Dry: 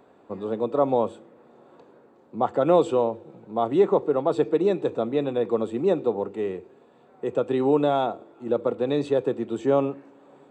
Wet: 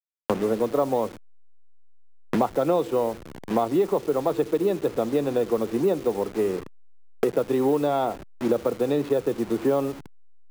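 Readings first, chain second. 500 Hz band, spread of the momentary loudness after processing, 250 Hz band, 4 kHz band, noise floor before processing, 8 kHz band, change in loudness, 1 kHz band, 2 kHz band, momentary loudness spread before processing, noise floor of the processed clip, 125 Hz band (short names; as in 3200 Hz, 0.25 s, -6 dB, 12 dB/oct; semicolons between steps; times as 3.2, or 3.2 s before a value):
-0.5 dB, 7 LU, +1.0 dB, +0.5 dB, -56 dBFS, n/a, -0.5 dB, -1.0 dB, +2.0 dB, 11 LU, -45 dBFS, 0.0 dB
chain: level-crossing sampler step -36.5 dBFS; three-band squash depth 100%; gain -1 dB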